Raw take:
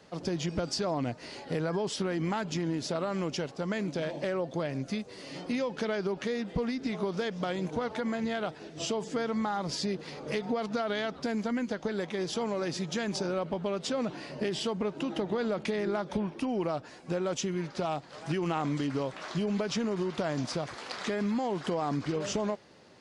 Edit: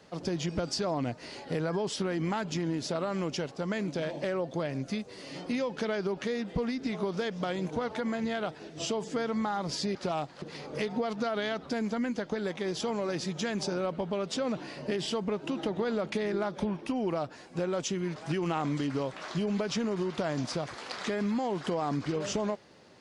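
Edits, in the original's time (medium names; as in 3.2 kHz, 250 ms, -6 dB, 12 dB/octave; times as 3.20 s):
17.69–18.16 s: move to 9.95 s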